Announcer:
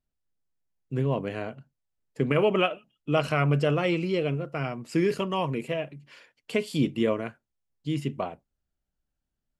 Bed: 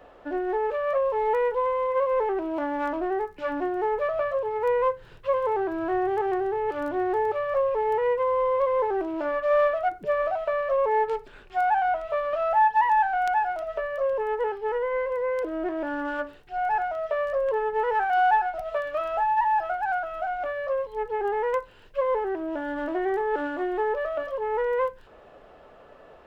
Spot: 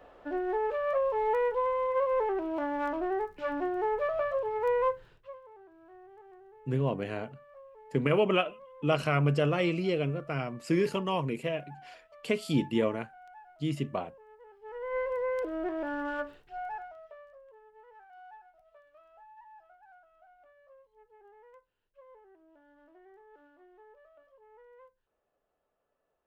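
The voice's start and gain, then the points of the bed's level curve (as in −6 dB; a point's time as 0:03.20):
5.75 s, −2.5 dB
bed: 0:04.98 −4 dB
0:05.44 −28 dB
0:14.46 −28 dB
0:14.97 −4.5 dB
0:16.33 −4.5 dB
0:17.47 −31 dB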